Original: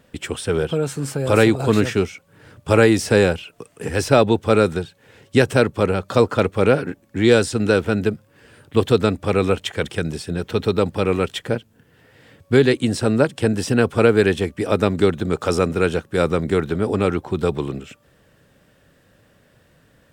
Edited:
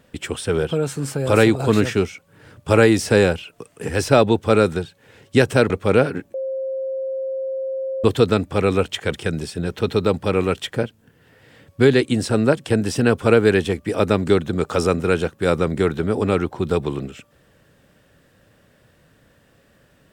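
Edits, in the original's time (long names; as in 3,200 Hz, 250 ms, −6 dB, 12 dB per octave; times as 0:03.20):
0:05.70–0:06.42: remove
0:07.06–0:08.76: beep over 531 Hz −22.5 dBFS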